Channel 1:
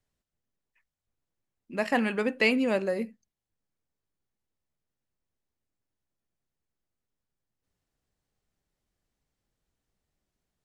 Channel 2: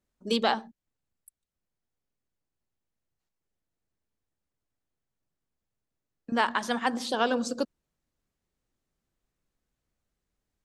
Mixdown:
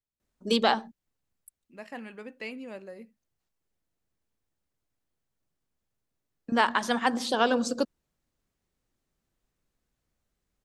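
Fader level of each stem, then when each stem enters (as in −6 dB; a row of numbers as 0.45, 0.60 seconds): −15.0, +2.0 decibels; 0.00, 0.20 seconds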